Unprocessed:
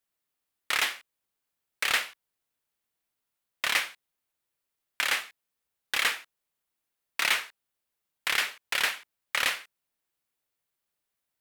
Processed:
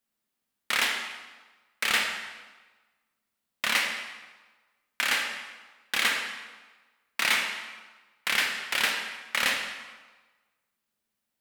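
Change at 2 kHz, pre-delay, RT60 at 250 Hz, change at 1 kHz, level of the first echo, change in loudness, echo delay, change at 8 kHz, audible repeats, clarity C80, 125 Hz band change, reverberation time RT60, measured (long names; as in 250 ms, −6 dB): +2.0 dB, 24 ms, 1.2 s, +2.0 dB, no echo audible, +1.0 dB, no echo audible, +1.0 dB, no echo audible, 6.0 dB, can't be measured, 1.3 s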